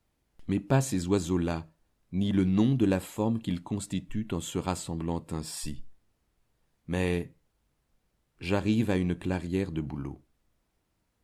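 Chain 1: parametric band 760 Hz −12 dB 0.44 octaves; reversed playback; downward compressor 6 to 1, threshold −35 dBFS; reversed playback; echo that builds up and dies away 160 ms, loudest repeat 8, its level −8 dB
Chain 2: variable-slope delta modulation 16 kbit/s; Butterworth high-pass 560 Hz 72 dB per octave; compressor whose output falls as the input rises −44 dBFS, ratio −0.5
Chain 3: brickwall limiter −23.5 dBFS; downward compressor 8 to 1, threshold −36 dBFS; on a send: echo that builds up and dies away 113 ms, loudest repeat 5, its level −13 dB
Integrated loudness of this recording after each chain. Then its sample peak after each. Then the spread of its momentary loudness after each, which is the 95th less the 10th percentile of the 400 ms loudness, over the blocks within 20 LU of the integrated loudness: −37.0, −45.5, −41.0 LKFS; −21.5, −27.5, −26.5 dBFS; 4, 9, 9 LU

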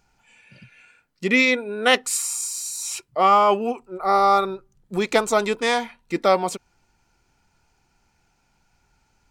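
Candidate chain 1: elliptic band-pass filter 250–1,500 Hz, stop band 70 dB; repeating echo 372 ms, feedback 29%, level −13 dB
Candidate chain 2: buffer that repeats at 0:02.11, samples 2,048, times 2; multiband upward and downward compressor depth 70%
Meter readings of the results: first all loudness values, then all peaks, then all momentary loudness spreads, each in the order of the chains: −22.5, −21.5 LKFS; −6.5, −4.5 dBFS; 17, 14 LU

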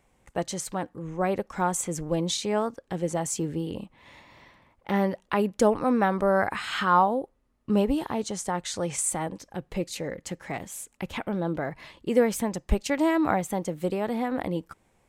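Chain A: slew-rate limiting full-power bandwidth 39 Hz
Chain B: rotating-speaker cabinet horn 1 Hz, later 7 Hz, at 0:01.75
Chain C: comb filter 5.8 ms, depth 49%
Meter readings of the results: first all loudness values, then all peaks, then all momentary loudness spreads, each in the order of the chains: −29.5, −30.0, −26.5 LKFS; −9.5, −9.0, −6.5 dBFS; 11, 13, 11 LU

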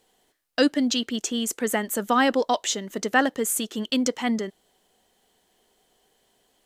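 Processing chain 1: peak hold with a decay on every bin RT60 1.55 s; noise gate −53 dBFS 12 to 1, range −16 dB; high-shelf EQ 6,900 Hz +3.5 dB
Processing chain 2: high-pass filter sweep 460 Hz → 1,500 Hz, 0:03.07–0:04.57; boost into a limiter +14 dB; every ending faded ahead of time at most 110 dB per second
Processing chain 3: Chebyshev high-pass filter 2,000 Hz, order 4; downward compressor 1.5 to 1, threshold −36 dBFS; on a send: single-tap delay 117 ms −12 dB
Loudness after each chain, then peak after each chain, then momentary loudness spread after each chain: −19.0, −22.0, −34.0 LKFS; −1.5, −1.0, −10.5 dBFS; 9, 17, 6 LU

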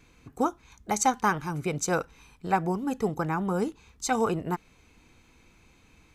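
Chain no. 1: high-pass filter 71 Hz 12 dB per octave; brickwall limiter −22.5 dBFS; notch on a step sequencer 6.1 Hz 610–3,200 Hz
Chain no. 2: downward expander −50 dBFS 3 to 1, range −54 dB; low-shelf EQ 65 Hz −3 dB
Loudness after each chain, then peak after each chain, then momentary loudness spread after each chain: −34.5, −29.0 LKFS; −22.5, −11.0 dBFS; 7, 9 LU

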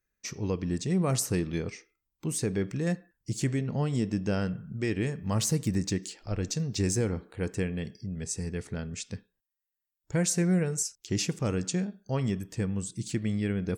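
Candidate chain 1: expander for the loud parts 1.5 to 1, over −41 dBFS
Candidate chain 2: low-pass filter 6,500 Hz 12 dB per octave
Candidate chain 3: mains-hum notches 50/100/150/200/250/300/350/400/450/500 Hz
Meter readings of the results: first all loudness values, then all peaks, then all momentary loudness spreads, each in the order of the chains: −33.0, −31.0, −31.5 LKFS; −18.0, −17.5, −16.0 dBFS; 13, 9, 10 LU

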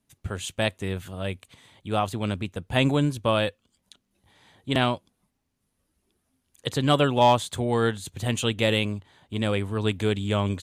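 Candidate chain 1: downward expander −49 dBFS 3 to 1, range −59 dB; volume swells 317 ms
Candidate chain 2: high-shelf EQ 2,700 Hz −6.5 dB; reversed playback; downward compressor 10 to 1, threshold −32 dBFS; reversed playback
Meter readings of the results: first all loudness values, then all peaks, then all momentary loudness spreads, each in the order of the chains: −29.0, −37.5 LKFS; −7.5, −20.0 dBFS; 16, 6 LU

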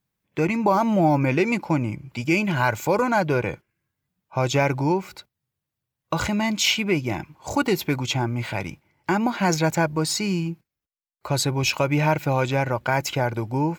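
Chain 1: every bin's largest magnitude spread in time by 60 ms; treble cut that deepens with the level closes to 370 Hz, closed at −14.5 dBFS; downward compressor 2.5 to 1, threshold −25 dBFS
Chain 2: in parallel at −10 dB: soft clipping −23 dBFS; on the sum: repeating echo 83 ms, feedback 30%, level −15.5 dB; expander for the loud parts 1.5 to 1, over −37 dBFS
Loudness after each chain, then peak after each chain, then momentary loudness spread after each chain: −28.0, −24.0 LKFS; −11.5, −7.0 dBFS; 6, 11 LU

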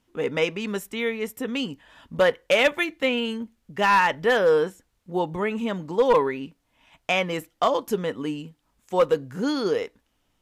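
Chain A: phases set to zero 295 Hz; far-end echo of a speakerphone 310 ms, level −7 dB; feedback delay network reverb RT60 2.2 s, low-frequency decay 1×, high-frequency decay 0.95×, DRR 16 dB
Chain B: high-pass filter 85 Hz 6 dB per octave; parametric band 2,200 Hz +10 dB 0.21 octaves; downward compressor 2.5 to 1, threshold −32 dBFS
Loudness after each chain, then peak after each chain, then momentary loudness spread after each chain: −27.0, −32.5 LKFS; −3.5, −15.0 dBFS; 14, 10 LU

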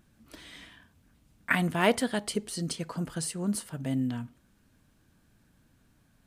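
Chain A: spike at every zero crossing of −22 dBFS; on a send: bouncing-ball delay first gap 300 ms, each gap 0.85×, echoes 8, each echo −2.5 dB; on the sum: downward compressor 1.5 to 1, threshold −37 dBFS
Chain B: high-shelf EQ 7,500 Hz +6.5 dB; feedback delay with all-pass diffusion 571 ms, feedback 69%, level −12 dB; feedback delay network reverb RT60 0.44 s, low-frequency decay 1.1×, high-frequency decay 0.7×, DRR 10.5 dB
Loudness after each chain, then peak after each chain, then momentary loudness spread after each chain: −29.5, −30.0 LKFS; −14.0, −9.5 dBFS; 3, 22 LU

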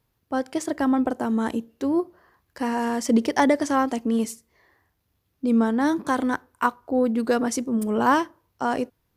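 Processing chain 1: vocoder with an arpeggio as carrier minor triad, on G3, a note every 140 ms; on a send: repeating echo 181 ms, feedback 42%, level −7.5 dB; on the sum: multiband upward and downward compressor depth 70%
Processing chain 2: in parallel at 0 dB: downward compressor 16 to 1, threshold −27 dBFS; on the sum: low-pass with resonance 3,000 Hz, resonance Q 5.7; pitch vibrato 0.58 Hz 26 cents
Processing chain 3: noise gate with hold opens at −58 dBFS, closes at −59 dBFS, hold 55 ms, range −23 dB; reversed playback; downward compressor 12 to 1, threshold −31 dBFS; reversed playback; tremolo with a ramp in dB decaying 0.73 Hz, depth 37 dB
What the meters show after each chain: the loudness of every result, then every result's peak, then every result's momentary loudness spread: −24.5, −20.5, −43.0 LKFS; −10.0, −2.0, −24.0 dBFS; 8, 8, 21 LU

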